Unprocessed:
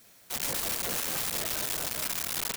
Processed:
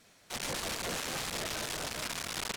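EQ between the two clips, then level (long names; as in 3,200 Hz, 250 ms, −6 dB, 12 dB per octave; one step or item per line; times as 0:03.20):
high-frequency loss of the air 55 metres
0.0 dB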